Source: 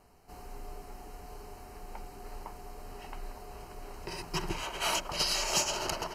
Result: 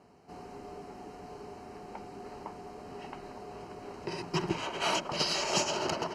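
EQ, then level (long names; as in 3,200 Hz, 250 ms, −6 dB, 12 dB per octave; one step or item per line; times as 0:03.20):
band-pass filter 180–6,200 Hz
low-shelf EQ 430 Hz +10.5 dB
0.0 dB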